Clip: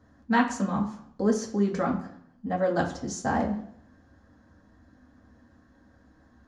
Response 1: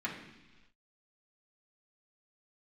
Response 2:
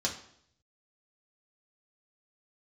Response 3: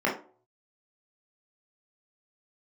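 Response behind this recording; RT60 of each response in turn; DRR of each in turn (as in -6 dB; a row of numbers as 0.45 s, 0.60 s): 2; no single decay rate, 0.65 s, no single decay rate; -6.0 dB, -2.5 dB, -5.0 dB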